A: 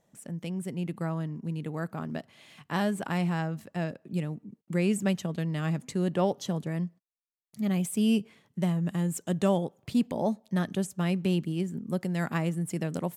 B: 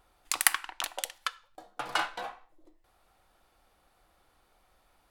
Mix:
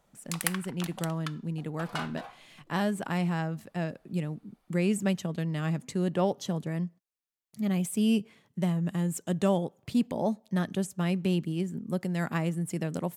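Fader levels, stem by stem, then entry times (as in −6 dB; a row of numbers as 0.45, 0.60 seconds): −0.5, −6.5 decibels; 0.00, 0.00 seconds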